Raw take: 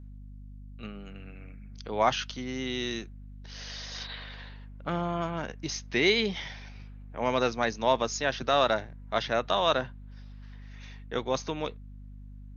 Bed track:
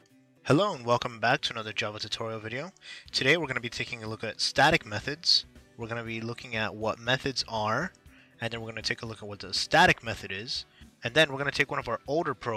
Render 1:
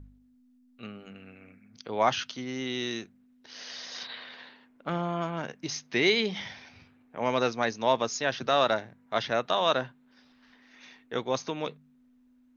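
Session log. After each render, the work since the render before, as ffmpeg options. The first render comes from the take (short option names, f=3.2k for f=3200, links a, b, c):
-af "bandreject=f=50:t=h:w=4,bandreject=f=100:t=h:w=4,bandreject=f=150:t=h:w=4,bandreject=f=200:t=h:w=4"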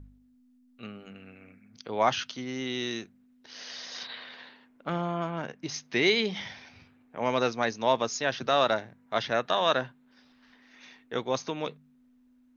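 -filter_complex "[0:a]asettb=1/sr,asplit=3[a][b][c];[a]atrim=end=5.124[d];[b]atrim=start=5.12:end=5.74,asetpts=PTS-STARTPTS,afade=t=in:d=0.004:c=qsin,afade=t=out:st=0.616:d=0.004:c=qsin,highshelf=f=4.5k:g=-6.5[e];[c]atrim=start=5.736[f];[d][e]acrossfade=d=0.004:c1=hsin:c2=qsin[g];[g][f]acrossfade=d=0.004:c1=qsin:c2=hsin,asettb=1/sr,asplit=3[h][i][j];[h]atrim=end=9.344[k];[i]atrim=start=9.34:end=9.8,asetpts=PTS-STARTPTS,afade=t=in:d=0.004:c=qsin,afade=t=out:st=0.456:d=0.004:c=qsin,equalizer=f=1.7k:w=5.9:g=7[l];[j]atrim=start=9.796[m];[k][l]acrossfade=d=0.004:c1=hsin:c2=qsin[n];[n][m]acrossfade=d=0.004:c1=qsin:c2=hsin"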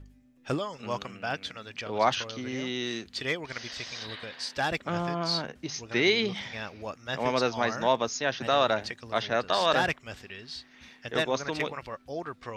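-filter_complex "[1:a]volume=-7.5dB[a];[0:a][a]amix=inputs=2:normalize=0"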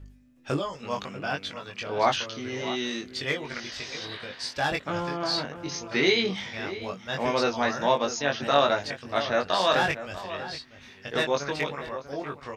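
-filter_complex "[0:a]asplit=2[a][b];[b]adelay=21,volume=-3dB[c];[a][c]amix=inputs=2:normalize=0,asplit=2[d][e];[e]adelay=641.4,volume=-12dB,highshelf=f=4k:g=-14.4[f];[d][f]amix=inputs=2:normalize=0"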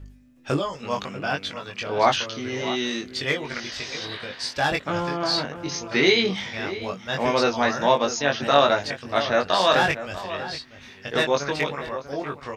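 -af "volume=4dB"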